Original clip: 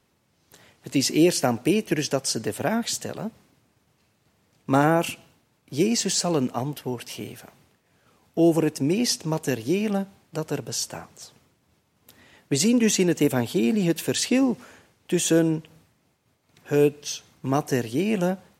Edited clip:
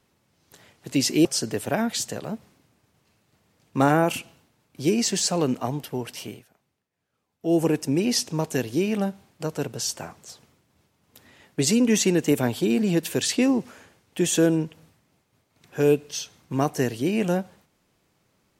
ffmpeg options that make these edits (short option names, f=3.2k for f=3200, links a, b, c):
-filter_complex "[0:a]asplit=4[a][b][c][d];[a]atrim=end=1.252[e];[b]atrim=start=2.178:end=7.38,asetpts=PTS-STARTPTS,afade=t=out:st=4.912:d=0.29:c=qsin:silence=0.141254[f];[c]atrim=start=7.38:end=8.32,asetpts=PTS-STARTPTS,volume=-17dB[g];[d]atrim=start=8.32,asetpts=PTS-STARTPTS,afade=t=in:d=0.29:c=qsin:silence=0.141254[h];[f][g][h]concat=n=3:v=0:a=1[i];[e][i]acrossfade=d=0.004:c1=hsin:c2=hsin"